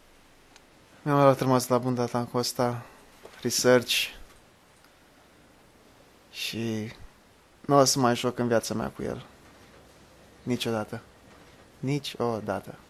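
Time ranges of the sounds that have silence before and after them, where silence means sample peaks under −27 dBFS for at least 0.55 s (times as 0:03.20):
0:01.06–0:02.78
0:03.45–0:04.07
0:06.40–0:06.83
0:07.69–0:09.13
0:10.47–0:10.95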